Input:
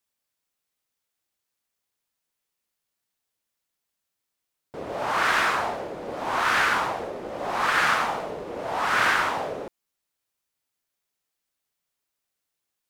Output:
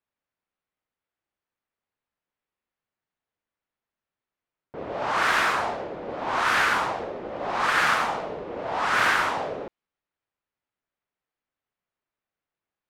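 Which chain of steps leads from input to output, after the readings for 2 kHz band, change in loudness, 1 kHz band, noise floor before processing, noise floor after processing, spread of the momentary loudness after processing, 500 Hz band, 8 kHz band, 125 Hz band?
0.0 dB, 0.0 dB, 0.0 dB, -83 dBFS, under -85 dBFS, 14 LU, 0.0 dB, -0.5 dB, 0.0 dB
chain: low-pass opened by the level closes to 2100 Hz, open at -18.5 dBFS

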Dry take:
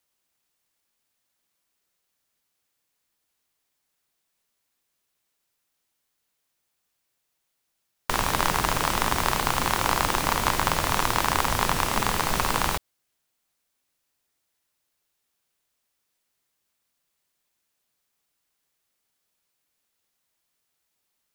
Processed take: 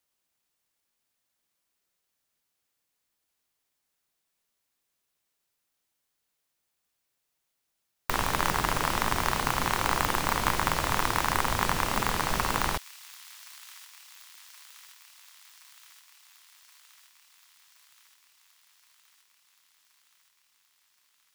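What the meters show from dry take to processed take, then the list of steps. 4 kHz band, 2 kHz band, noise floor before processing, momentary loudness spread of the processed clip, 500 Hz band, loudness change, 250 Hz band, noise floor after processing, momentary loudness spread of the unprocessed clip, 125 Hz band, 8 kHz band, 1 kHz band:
-4.0 dB, -2.0 dB, -78 dBFS, 19 LU, -3.5 dB, -3.0 dB, -3.0 dB, -80 dBFS, 3 LU, -3.0 dB, -4.5 dB, -3.0 dB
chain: tracing distortion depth 0.31 ms; thin delay 1.073 s, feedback 71%, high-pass 3100 Hz, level -15 dB; gain -3 dB

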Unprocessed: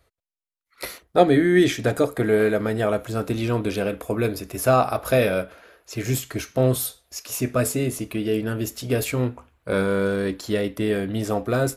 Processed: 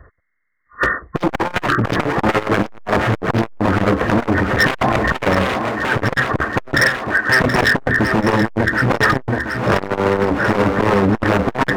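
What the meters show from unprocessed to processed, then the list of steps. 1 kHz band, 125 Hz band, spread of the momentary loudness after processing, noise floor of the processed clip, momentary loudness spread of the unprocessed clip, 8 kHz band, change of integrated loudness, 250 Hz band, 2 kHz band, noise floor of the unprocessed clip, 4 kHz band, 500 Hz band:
+10.0 dB, +5.5 dB, 5 LU, -57 dBFS, 10 LU, -4.0 dB, +6.0 dB, +5.0 dB, +14.5 dB, -79 dBFS, +7.5 dB, +2.5 dB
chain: nonlinear frequency compression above 1000 Hz 4:1; low shelf 460 Hz +10.5 dB; in parallel at +1 dB: compressor 6:1, threshold -20 dBFS, peak gain reduction 15 dB; on the sum: wavefolder -12.5 dBFS; on a send: thinning echo 0.726 s, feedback 71%, high-pass 150 Hz, level -8.5 dB; on the sum: core saturation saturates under 410 Hz; gain +5.5 dB

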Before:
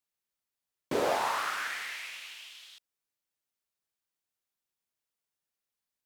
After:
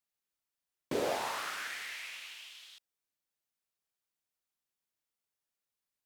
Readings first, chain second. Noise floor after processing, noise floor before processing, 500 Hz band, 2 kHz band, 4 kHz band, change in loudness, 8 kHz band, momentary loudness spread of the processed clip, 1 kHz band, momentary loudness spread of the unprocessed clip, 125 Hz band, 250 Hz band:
under -85 dBFS, under -85 dBFS, -4.0 dB, -4.5 dB, -2.5 dB, -5.0 dB, -2.0 dB, 15 LU, -7.0 dB, 17 LU, -2.0 dB, -2.5 dB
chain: dynamic EQ 1100 Hz, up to -6 dB, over -44 dBFS, Q 0.96; gain -2 dB

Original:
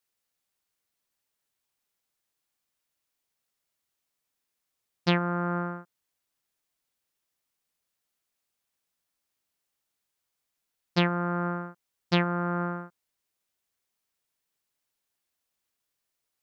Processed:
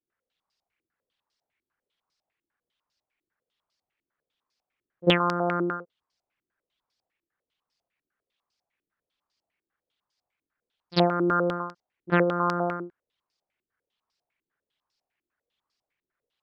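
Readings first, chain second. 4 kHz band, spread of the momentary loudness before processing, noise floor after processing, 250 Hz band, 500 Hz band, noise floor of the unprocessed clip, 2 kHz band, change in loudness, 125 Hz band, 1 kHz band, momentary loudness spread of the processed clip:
+3.5 dB, 13 LU, under -85 dBFS, +2.0 dB, +7.0 dB, -83 dBFS, +2.5 dB, +3.5 dB, -1.0 dB, +4.5 dB, 13 LU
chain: formant sharpening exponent 1.5; pre-echo 46 ms -22 dB; stepped low-pass 10 Hz 340–4900 Hz

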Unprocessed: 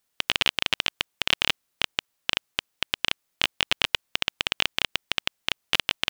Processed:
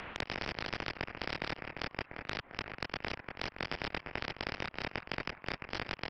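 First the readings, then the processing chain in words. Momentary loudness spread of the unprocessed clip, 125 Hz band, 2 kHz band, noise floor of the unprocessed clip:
5 LU, -0.5 dB, -10.5 dB, -76 dBFS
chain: FFT order left unsorted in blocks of 32 samples; pre-echo 43 ms -20.5 dB; chorus voices 6, 0.34 Hz, delay 23 ms, depth 4.2 ms; low shelf 380 Hz +7.5 dB; feedback echo 0.347 s, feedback 22%, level -19 dB; mistuned SSB -370 Hz 270–2400 Hz; upward compressor, threshold -45 dBFS; spectral compressor 4:1; gain +4.5 dB

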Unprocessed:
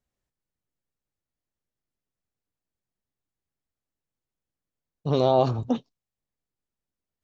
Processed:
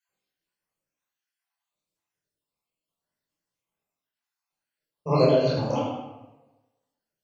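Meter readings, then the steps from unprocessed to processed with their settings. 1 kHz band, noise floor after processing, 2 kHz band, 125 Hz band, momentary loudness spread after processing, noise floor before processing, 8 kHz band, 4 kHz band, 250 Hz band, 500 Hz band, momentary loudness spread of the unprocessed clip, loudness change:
-2.5 dB, under -85 dBFS, +8.5 dB, +1.0 dB, 16 LU, under -85 dBFS, n/a, +2.5 dB, +1.0 dB, +2.0 dB, 10 LU, +0.5 dB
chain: random spectral dropouts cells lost 67%; HPF 590 Hz 6 dB/oct; tape echo 79 ms, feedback 63%, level -4 dB, low-pass 4700 Hz; chorus voices 2, 1.4 Hz, delay 25 ms, depth 3 ms; shoebox room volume 880 m³, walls furnished, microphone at 5.1 m; gain +7 dB

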